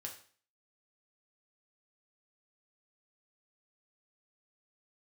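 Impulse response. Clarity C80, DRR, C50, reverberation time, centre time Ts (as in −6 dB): 13.0 dB, 0.5 dB, 8.5 dB, 0.45 s, 18 ms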